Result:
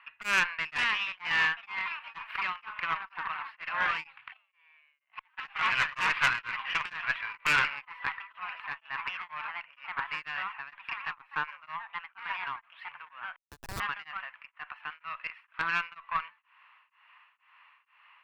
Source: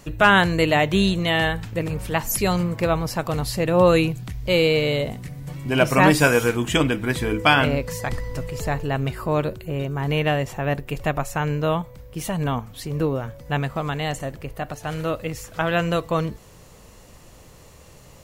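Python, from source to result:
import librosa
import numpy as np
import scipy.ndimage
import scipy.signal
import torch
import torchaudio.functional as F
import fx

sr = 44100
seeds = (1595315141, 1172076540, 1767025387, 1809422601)

y = fx.self_delay(x, sr, depth_ms=0.22)
y = fx.echo_pitch(y, sr, ms=577, semitones=3, count=3, db_per_echo=-6.0)
y = scipy.signal.sosfilt(scipy.signal.ellip(3, 1.0, 50, [1000.0, 2700.0], 'bandpass', fs=sr, output='sos'), y)
y = fx.gate_flip(y, sr, shuts_db=-27.0, range_db=-33, at=(4.32, 5.37), fade=0.02)
y = fx.transient(y, sr, attack_db=0, sustain_db=-7, at=(11.05, 11.76))
y = fx.schmitt(y, sr, flips_db=-29.0, at=(13.36, 13.8))
y = fx.high_shelf(y, sr, hz=2100.0, db=5.0)
y = fx.tube_stage(y, sr, drive_db=15.0, bias=0.4)
y = y * np.abs(np.cos(np.pi * 2.1 * np.arange(len(y)) / sr))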